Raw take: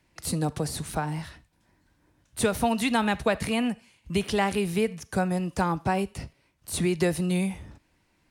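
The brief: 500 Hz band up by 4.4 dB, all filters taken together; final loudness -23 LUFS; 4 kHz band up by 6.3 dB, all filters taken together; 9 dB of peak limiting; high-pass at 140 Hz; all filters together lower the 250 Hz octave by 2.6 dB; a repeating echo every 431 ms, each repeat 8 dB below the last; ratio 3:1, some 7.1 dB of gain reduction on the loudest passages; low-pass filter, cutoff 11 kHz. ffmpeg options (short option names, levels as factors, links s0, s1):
-af "highpass=140,lowpass=11000,equalizer=f=250:t=o:g=-4.5,equalizer=f=500:t=o:g=7,equalizer=f=4000:t=o:g=8,acompressor=threshold=0.0631:ratio=3,alimiter=limit=0.0794:level=0:latency=1,aecho=1:1:431|862|1293|1724|2155:0.398|0.159|0.0637|0.0255|0.0102,volume=2.82"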